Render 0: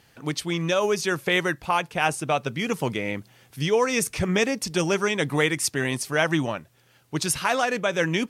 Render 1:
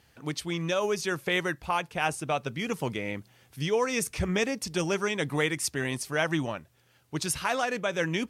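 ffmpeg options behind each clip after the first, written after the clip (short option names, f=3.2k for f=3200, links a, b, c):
-af "equalizer=f=67:t=o:w=0.43:g=11,volume=-5dB"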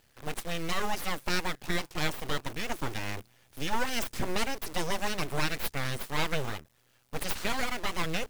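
-af "acrusher=bits=8:dc=4:mix=0:aa=0.000001,aeval=exprs='abs(val(0))':c=same"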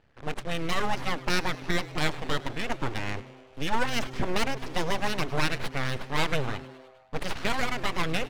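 -filter_complex "[0:a]adynamicsmooth=sensitivity=8:basefreq=2.3k,asplit=7[a][b][c][d][e][f][g];[b]adelay=103,afreqshift=130,volume=-19dB[h];[c]adelay=206,afreqshift=260,volume=-22.9dB[i];[d]adelay=309,afreqshift=390,volume=-26.8dB[j];[e]adelay=412,afreqshift=520,volume=-30.6dB[k];[f]adelay=515,afreqshift=650,volume=-34.5dB[l];[g]adelay=618,afreqshift=780,volume=-38.4dB[m];[a][h][i][j][k][l][m]amix=inputs=7:normalize=0,volume=3.5dB"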